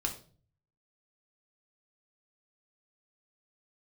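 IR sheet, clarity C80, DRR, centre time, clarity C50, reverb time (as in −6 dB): 15.0 dB, 1.5 dB, 13 ms, 10.5 dB, 0.40 s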